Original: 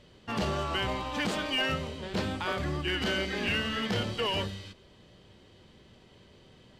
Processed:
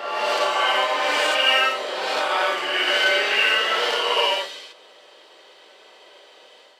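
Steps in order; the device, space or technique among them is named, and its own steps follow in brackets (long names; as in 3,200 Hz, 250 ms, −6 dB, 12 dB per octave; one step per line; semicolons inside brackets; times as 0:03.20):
ghost voice (reversed playback; convolution reverb RT60 1.6 s, pre-delay 45 ms, DRR −5 dB; reversed playback; high-pass filter 510 Hz 24 dB per octave)
level +6.5 dB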